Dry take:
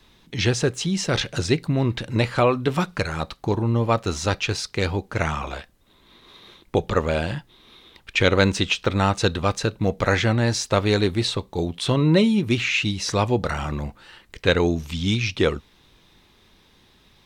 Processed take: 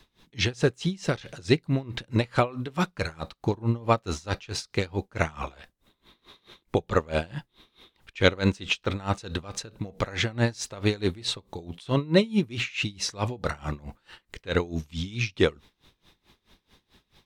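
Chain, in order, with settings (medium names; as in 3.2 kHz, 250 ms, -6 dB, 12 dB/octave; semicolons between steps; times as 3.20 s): logarithmic tremolo 4.6 Hz, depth 23 dB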